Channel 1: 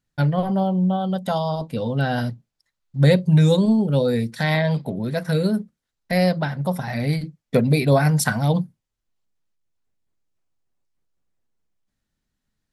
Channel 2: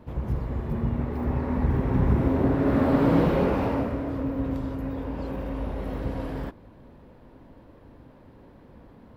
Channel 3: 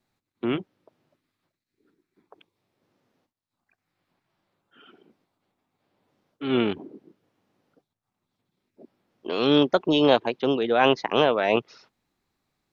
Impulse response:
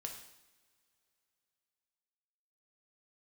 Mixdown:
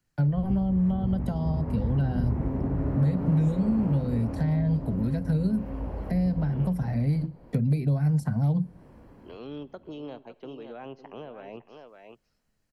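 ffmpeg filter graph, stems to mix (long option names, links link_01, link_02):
-filter_complex "[0:a]acrossover=split=200[link_01][link_02];[link_02]acompressor=threshold=-22dB:ratio=6[link_03];[link_01][link_03]amix=inputs=2:normalize=0,volume=1.5dB,asplit=2[link_04][link_05];[link_05]volume=-19dB[link_06];[1:a]adynamicequalizer=threshold=0.01:dfrequency=720:dqfactor=0.96:tfrequency=720:tqfactor=0.96:attack=5:release=100:ratio=0.375:range=3:mode=boostabove:tftype=bell,adelay=200,volume=-2.5dB,asplit=2[link_07][link_08];[link_08]volume=-6dB[link_09];[2:a]volume=-16dB,asplit=3[link_10][link_11][link_12];[link_11]volume=-12.5dB[link_13];[link_12]volume=-11.5dB[link_14];[3:a]atrim=start_sample=2205[link_15];[link_06][link_13]amix=inputs=2:normalize=0[link_16];[link_16][link_15]afir=irnorm=-1:irlink=0[link_17];[link_09][link_14]amix=inputs=2:normalize=0,aecho=0:1:556:1[link_18];[link_04][link_07][link_10][link_17][link_18]amix=inputs=5:normalize=0,bandreject=frequency=3600:width=6.1,acrossover=split=240|1000[link_19][link_20][link_21];[link_19]acompressor=threshold=-22dB:ratio=4[link_22];[link_20]acompressor=threshold=-41dB:ratio=4[link_23];[link_21]acompressor=threshold=-54dB:ratio=4[link_24];[link_22][link_23][link_24]amix=inputs=3:normalize=0"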